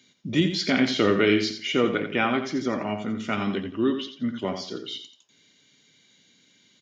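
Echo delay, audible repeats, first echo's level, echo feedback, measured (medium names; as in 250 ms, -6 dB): 86 ms, 3, -9.0 dB, 29%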